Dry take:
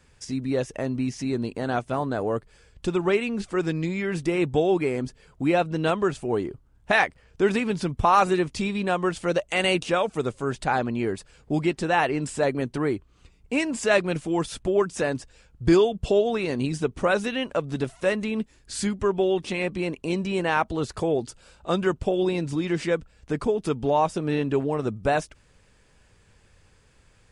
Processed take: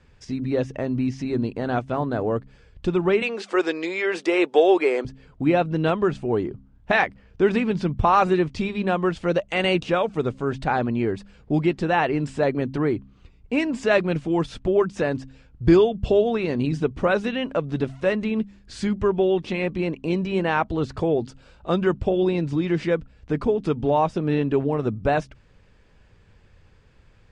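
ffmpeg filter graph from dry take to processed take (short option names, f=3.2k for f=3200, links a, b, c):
-filter_complex "[0:a]asettb=1/sr,asplit=3[a][b][c];[a]atrim=end=3.224[d];[b]atrim=start=3.22:end=5.05,asetpts=PTS-STARTPTS,afade=t=in:d=0.004:c=qsin,afade=t=out:st=1.826:d=0.004:c=qsin,highpass=f=390:w=0.5412,highpass=f=390:w=1.3066,highshelf=f=4k:g=5.5,acontrast=41[e];[c]atrim=start=5.046[f];[d][e]acrossfade=d=0.004:c1=hsin:c2=qsin[g];[g][f]acrossfade=d=0.004:c1=qsin:c2=hsin,lowpass=4.3k,lowshelf=f=380:g=5,bandreject=f=66.56:t=h:w=4,bandreject=f=133.12:t=h:w=4,bandreject=f=199.68:t=h:w=4,bandreject=f=266.24:t=h:w=4"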